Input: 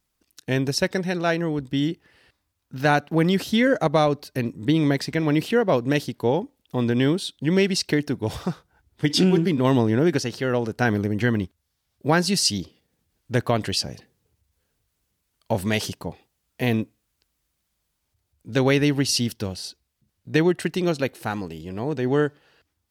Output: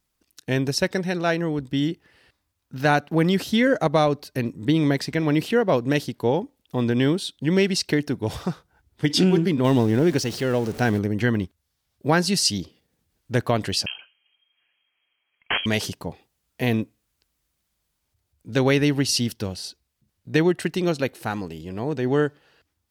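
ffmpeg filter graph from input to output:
-filter_complex "[0:a]asettb=1/sr,asplit=3[s0][s1][s2];[s0]atrim=end=9.644[s3];[s1]atrim=start=9.64:end=10.99,asetpts=PTS-STARTPTS,afade=t=in:d=0.004:c=qsin,afade=t=out:st=1.346:d=0.004:c=qsin,aeval=exprs='val(0)+0.5*0.0237*sgn(val(0))':c=same,equalizer=f=1300:w=1.1:g=-3.5[s4];[s2]atrim=start=10.986[s5];[s3][s4]acrossfade=d=0.004:c1=hsin:c2=qsin[s6];[s6][s5]acrossfade=d=0.004:c1=qsin:c2=hsin,asettb=1/sr,asplit=3[s7][s8][s9];[s7]atrim=end=13.864[s10];[s8]atrim=start=13.86:end=15.66,asetpts=PTS-STARTPTS,afade=t=in:d=0.004:c=qsin,afade=t=out:st=1.796:d=0.004:c=qsin,equalizer=f=900:w=1.2:g=15,aeval=exprs='(mod(5.01*val(0)+1,2)-1)/5.01':c=same,lowpass=f=2800:t=q:w=0.5098,lowpass=f=2800:t=q:w=0.6013,lowpass=f=2800:t=q:w=0.9,lowpass=f=2800:t=q:w=2.563,afreqshift=-3300[s11];[s9]atrim=start=15.656[s12];[s10][s11]acrossfade=d=0.004:c1=hsin:c2=qsin[s13];[s13][s12]acrossfade=d=0.004:c1=qsin:c2=hsin"

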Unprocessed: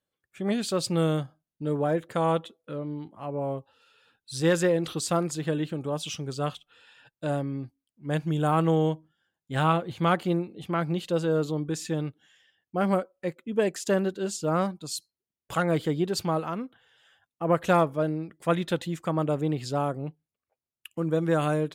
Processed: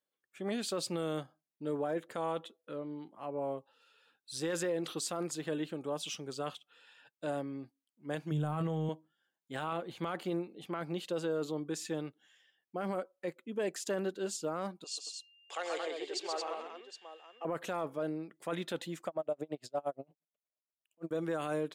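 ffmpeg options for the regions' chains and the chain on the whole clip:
-filter_complex "[0:a]asettb=1/sr,asplit=3[s0][s1][s2];[s0]atrim=end=8.314[s3];[s1]atrim=start=8.31:end=8.89,asetpts=PTS-STARTPTS,afade=t=in:d=0.004:c=qsin,afade=t=out:st=0.576:d=0.004:c=qsin,equalizer=f=150:w=3.7:g=14,asplit=2[s4][s5];[s5]adelay=20,volume=0.251[s6];[s4][s6]amix=inputs=2:normalize=0,atrim=end_sample=25578[s7];[s2]atrim=start=8.886[s8];[s3][s7]acrossfade=d=0.004:c1=hsin:c2=qsin[s9];[s9][s8]acrossfade=d=0.004:c1=qsin:c2=hsin,asettb=1/sr,asplit=3[s10][s11][s12];[s10]atrim=end=14.844[s13];[s11]atrim=start=14.84:end=17.45,asetpts=PTS-STARTPTS,afade=t=in:d=0.004:c=qsin,afade=t=out:st=2.606:d=0.004:c=qsin,aeval=exprs='val(0)+0.00224*sin(2*PI*2800*n/s)':c=same,highpass=f=480:w=0.5412,highpass=f=480:w=1.3066,equalizer=f=590:t=q:w=4:g=-6,equalizer=f=970:t=q:w=4:g=-6,equalizer=f=1400:t=q:w=4:g=-9,lowpass=f=7500:w=0.5412,lowpass=f=7500:w=1.3066,aecho=1:1:88|132|224|766:0.112|0.631|0.531|0.237,atrim=end_sample=115101[s14];[s12]atrim=start=17.446[s15];[s13][s14]acrossfade=d=0.004:c1=hsin:c2=qsin[s16];[s16][s15]acrossfade=d=0.004:c1=qsin:c2=hsin,asettb=1/sr,asplit=3[s17][s18][s19];[s17]atrim=end=19.074[s20];[s18]atrim=start=19.07:end=21.11,asetpts=PTS-STARTPTS,afade=t=in:d=0.004:c=qsin,afade=t=out:st=2.036:d=0.004:c=qsin,highpass=52,equalizer=f=630:w=3.8:g=14,aeval=exprs='val(0)*pow(10,-38*(0.5-0.5*cos(2*PI*8.6*n/s))/20)':c=same[s21];[s19]atrim=start=21.106[s22];[s20][s21]acrossfade=d=0.004:c1=hsin:c2=qsin[s23];[s23][s22]acrossfade=d=0.004:c1=qsin:c2=hsin,highpass=250,alimiter=limit=0.0891:level=0:latency=1:release=12,volume=0.562"

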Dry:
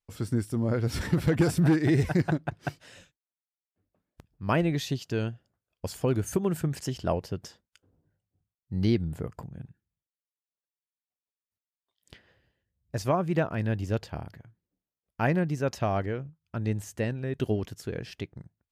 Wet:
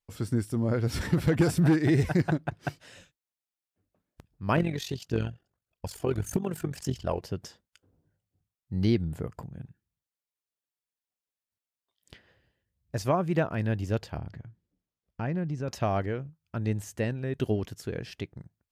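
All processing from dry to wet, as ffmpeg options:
-filter_complex "[0:a]asettb=1/sr,asplit=3[s0][s1][s2];[s0]atrim=end=4.564[s3];[s1]atrim=start=4.56:end=7.23,asetpts=PTS-STARTPTS,afade=t=in:d=0.004:c=qsin,afade=t=out:st=2.666:d=0.004:c=qsin,aphaser=in_gain=1:out_gain=1:delay=3:decay=0.48:speed=1.7:type=triangular,tremolo=f=45:d=0.71,asoftclip=type=hard:threshold=0.158[s4];[s2]atrim=start=7.226[s5];[s3][s4]acrossfade=d=0.004:c1=hsin:c2=qsin[s6];[s6][s5]acrossfade=d=0.004:c1=qsin:c2=hsin,asettb=1/sr,asplit=3[s7][s8][s9];[s7]atrim=end=14.174[s10];[s8]atrim=start=14.17:end=15.68,asetpts=PTS-STARTPTS,afade=t=in:d=0.004:c=qsin,afade=t=out:st=1.506:d=0.004:c=qsin,lowpass=6600,lowshelf=f=310:g=8,acompressor=threshold=0.0178:ratio=2:attack=3.2:release=140:knee=1:detection=peak[s11];[s9]atrim=start=15.676[s12];[s10][s11]acrossfade=d=0.004:c1=hsin:c2=qsin[s13];[s13][s12]acrossfade=d=0.004:c1=qsin:c2=hsin"

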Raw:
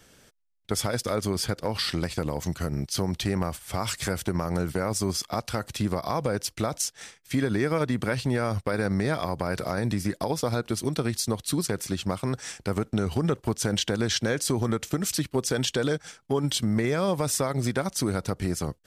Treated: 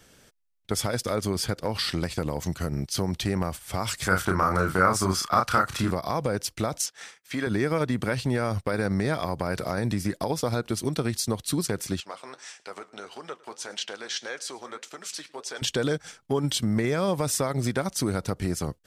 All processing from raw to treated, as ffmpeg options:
-filter_complex "[0:a]asettb=1/sr,asplit=3[s0][s1][s2];[s0]atrim=end=4.084[s3];[s1]atrim=start=4.08:end=5.91,asetpts=PTS-STARTPTS,afade=t=in:d=0.004:c=qsin,afade=t=out:st=1.826:d=0.004:c=qsin,equalizer=f=1300:w=1.8:g=14.5,asplit=2[s4][s5];[s5]adelay=32,volume=0.631[s6];[s4][s6]amix=inputs=2:normalize=0,atrim=end_sample=80703[s7];[s2]atrim=start=5.906[s8];[s3][s7]acrossfade=d=0.004:c1=hsin:c2=qsin[s9];[s9][s8]acrossfade=d=0.004:c1=qsin:c2=hsin,asettb=1/sr,asplit=3[s10][s11][s12];[s10]atrim=end=6.864[s13];[s11]atrim=start=6.86:end=7.47,asetpts=PTS-STARTPTS,afade=t=in:d=0.004:c=qsin,afade=t=out:st=0.606:d=0.004:c=qsin,acrossover=split=6300[s14][s15];[s15]acompressor=threshold=0.00316:ratio=4:attack=1:release=60[s16];[s14][s16]amix=inputs=2:normalize=0,highpass=f=390:p=1,equalizer=f=1300:t=o:w=1.2:g=4[s17];[s12]atrim=start=7.466[s18];[s13][s17]acrossfade=d=0.004:c1=hsin:c2=qsin[s19];[s19][s18]acrossfade=d=0.004:c1=qsin:c2=hsin,asettb=1/sr,asplit=3[s20][s21][s22];[s20]atrim=end=12.004[s23];[s21]atrim=start=12:end=15.62,asetpts=PTS-STARTPTS,afade=t=in:d=0.004:c=qsin,afade=t=out:st=3.616:d=0.004:c=qsin,flanger=delay=4.6:depth=9:regen=-61:speed=1.7:shape=triangular,highpass=660,lowpass=7800,aecho=1:1:106:0.0794,atrim=end_sample=159642[s24];[s22]atrim=start=15.616[s25];[s23][s24]acrossfade=d=0.004:c1=hsin:c2=qsin[s26];[s26][s25]acrossfade=d=0.004:c1=qsin:c2=hsin"

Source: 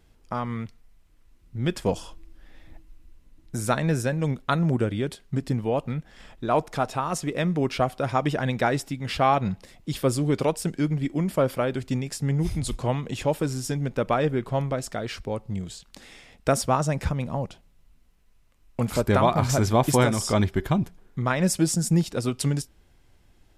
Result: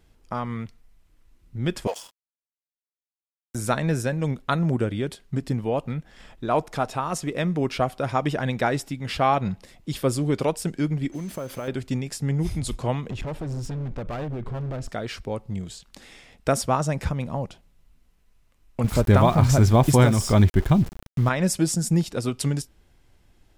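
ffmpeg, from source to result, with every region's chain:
-filter_complex "[0:a]asettb=1/sr,asplit=3[s0][s1][s2];[s0]atrim=end=1.874[s3];[s1]atrim=start=1.87:end=3.55,asetpts=PTS-STARTPTS,afade=t=in:d=0.004:c=qsin,afade=t=out:st=1.676:d=0.004:c=qsin,highpass=f=490:w=0.5412,highpass=f=490:w=1.3066,highshelf=f=3300:g=8,aeval=exprs='sgn(val(0))*max(abs(val(0))-0.00708,0)':c=same[s4];[s2]atrim=start=3.546[s5];[s3][s4]acrossfade=d=0.004:c1=hsin:c2=qsin[s6];[s6][s5]acrossfade=d=0.004:c1=qsin:c2=hsin,asettb=1/sr,asplit=3[s7][s8][s9];[s7]atrim=end=11.124[s10];[s8]atrim=start=11.12:end=11.68,asetpts=PTS-STARTPTS,afade=t=in:d=0.004:c=qsin,afade=t=out:st=0.556:d=0.004:c=qsin,acompressor=threshold=0.0447:ratio=20:attack=3.2:release=140:knee=1:detection=peak,acrusher=bits=7:mix=0:aa=0.5,aeval=exprs='val(0)+0.002*sin(2*PI*6200*n/s)':c=same[s11];[s9]atrim=start=11.676[s12];[s10][s11]acrossfade=d=0.004:c1=hsin:c2=qsin[s13];[s13][s12]acrossfade=d=0.004:c1=qsin:c2=hsin,asettb=1/sr,asplit=3[s14][s15][s16];[s14]atrim=end=13.104[s17];[s15]atrim=start=13.1:end=14.89,asetpts=PTS-STARTPTS,afade=t=in:d=0.004:c=qsin,afade=t=out:st=1.786:d=0.004:c=qsin,aemphasis=mode=reproduction:type=bsi,acompressor=threshold=0.0794:ratio=6:attack=3.2:release=140:knee=1:detection=peak,asoftclip=type=hard:threshold=0.0422[s18];[s16]atrim=start=14.886[s19];[s17][s18]acrossfade=d=0.004:c1=hsin:c2=qsin[s20];[s20][s19]acrossfade=d=0.004:c1=qsin:c2=hsin,asettb=1/sr,asplit=3[s21][s22][s23];[s21]atrim=end=18.844[s24];[s22]atrim=start=18.84:end=21.29,asetpts=PTS-STARTPTS,afade=t=in:d=0.004:c=qsin,afade=t=out:st=2.446:d=0.004:c=qsin,lowshelf=f=150:g=12,aeval=exprs='val(0)*gte(abs(val(0)),0.0178)':c=same[s25];[s23]atrim=start=21.286[s26];[s24][s25]acrossfade=d=0.004:c1=hsin:c2=qsin[s27];[s27][s26]acrossfade=d=0.004:c1=qsin:c2=hsin"

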